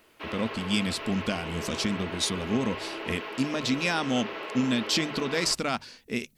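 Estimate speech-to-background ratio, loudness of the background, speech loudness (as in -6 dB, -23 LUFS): 7.5 dB, -36.5 LUFS, -29.0 LUFS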